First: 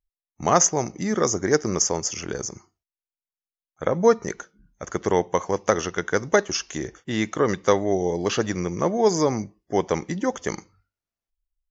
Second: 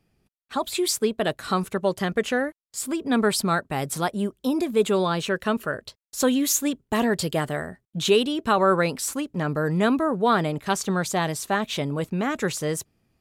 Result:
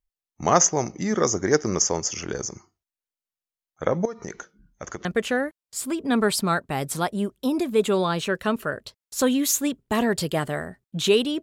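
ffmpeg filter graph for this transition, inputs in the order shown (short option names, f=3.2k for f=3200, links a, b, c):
-filter_complex "[0:a]asettb=1/sr,asplit=3[a][b][c];[a]atrim=end=4.054[d];[b]atrim=start=4.05:end=5.05,asetpts=PTS-STARTPTS,afade=t=in:d=0.004:c=qsin,afade=t=out:st=0.996:d=0.004:c=qsin,acompressor=threshold=-28dB:ratio=16:attack=3.2:release=140:knee=1:detection=peak[e];[c]atrim=start=5.046[f];[d][e]acrossfade=d=0.004:c1=hsin:c2=qsin[g];[g][f]acrossfade=d=0.004:c1=qsin:c2=hsin,apad=whole_dur=11.42,atrim=end=11.42,atrim=end=5.052[h];[1:a]atrim=start=2.058:end=8.43[i];[h][i]acrossfade=d=0.004:c1=hsin:c2=hsin"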